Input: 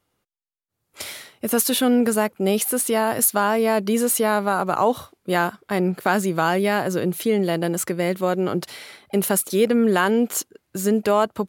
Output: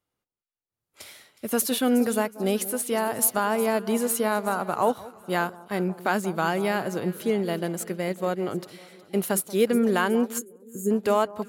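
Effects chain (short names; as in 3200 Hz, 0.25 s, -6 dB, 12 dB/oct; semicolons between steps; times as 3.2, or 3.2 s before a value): echo with dull and thin repeats by turns 0.183 s, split 1200 Hz, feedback 73%, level -13 dB; spectral gain 10.38–10.91, 570–6400 Hz -18 dB; upward expander 1.5:1, over -32 dBFS; gain -2.5 dB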